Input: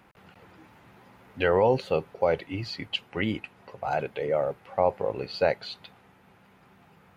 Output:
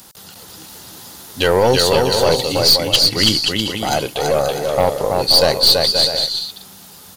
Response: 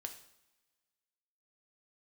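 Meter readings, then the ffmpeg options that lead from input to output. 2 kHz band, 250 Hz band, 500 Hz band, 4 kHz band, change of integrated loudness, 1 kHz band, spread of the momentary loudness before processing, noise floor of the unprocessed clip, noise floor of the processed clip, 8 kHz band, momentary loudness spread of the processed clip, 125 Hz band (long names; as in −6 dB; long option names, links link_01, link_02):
+10.0 dB, +10.5 dB, +10.0 dB, +25.5 dB, +13.5 dB, +10.0 dB, 12 LU, −58 dBFS, −41 dBFS, can't be measured, 9 LU, +11.5 dB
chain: -af "aexciter=amount=15.1:drive=4.4:freq=3600,aecho=1:1:330|528|646.8|718.1|760.8:0.631|0.398|0.251|0.158|0.1,aeval=exprs='0.631*(cos(1*acos(clip(val(0)/0.631,-1,1)))-cos(1*PI/2))+0.0794*(cos(4*acos(clip(val(0)/0.631,-1,1)))-cos(4*PI/2))+0.141*(cos(5*acos(clip(val(0)/0.631,-1,1)))-cos(5*PI/2))+0.0447*(cos(6*acos(clip(val(0)/0.631,-1,1)))-cos(6*PI/2))+0.0631*(cos(8*acos(clip(val(0)/0.631,-1,1)))-cos(8*PI/2))':channel_layout=same,volume=2dB"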